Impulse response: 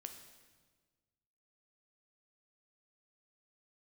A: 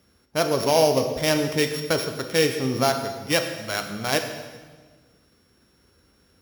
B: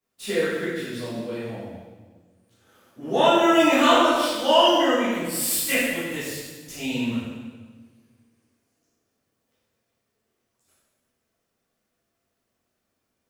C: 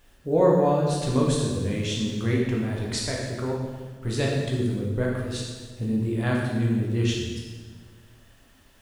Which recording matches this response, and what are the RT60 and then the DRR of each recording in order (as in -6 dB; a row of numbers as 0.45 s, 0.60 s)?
A; 1.4 s, 1.4 s, 1.4 s; 5.5 dB, -12.5 dB, -3.0 dB